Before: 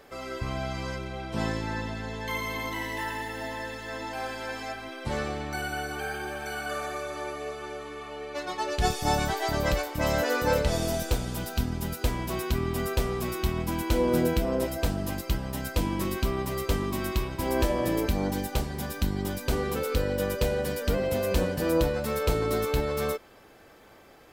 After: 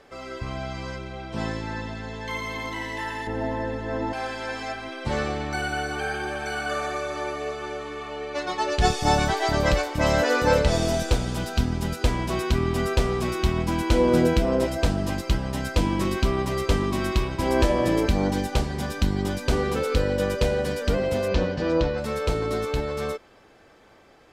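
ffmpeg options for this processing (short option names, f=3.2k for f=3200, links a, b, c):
-filter_complex "[0:a]asettb=1/sr,asplit=3[a][b][c];[a]atrim=end=3.274[d];[b]atrim=start=3.27:end=4.13,asetpts=PTS-STARTPTS,afade=t=in:d=0.004:c=qsin,afade=t=out:st=0.856:d=0.004:c=qsin,tiltshelf=f=1.3k:g=9.5[e];[c]atrim=start=4.126[f];[d][e]acrossfade=d=0.004:c1=hsin:c2=qsin[g];[g][f]acrossfade=d=0.004:c1=qsin:c2=hsin,asettb=1/sr,asplit=3[h][i][j];[h]atrim=end=21.284[k];[i]atrim=start=21.28:end=21.98,asetpts=PTS-STARTPTS,afade=t=in:d=0.004:c=qsin,afade=t=out:st=0.696:d=0.004:c=qsin,lowpass=f=5.7k:w=0.5412,lowpass=f=5.7k:w=1.3066[l];[j]atrim=start=21.976[m];[k][l]acrossfade=d=0.004:c1=hsin:c2=qsin[n];[n][m]acrossfade=d=0.004:c1=qsin:c2=hsin,lowpass=7.7k,dynaudnorm=f=600:g=13:m=5dB"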